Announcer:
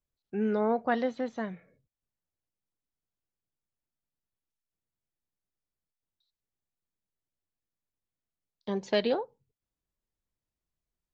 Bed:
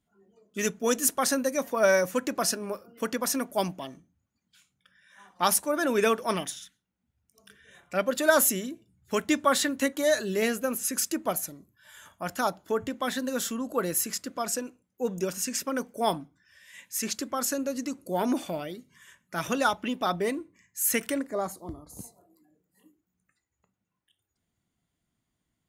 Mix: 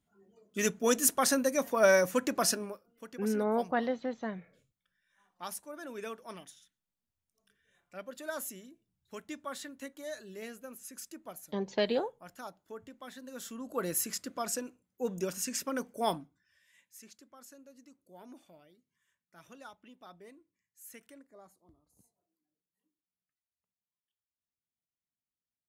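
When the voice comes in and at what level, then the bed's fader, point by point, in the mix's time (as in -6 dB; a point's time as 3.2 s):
2.85 s, -2.5 dB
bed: 2.61 s -1.5 dB
2.83 s -17.5 dB
13.2 s -17.5 dB
13.88 s -4.5 dB
16.12 s -4.5 dB
17.15 s -25 dB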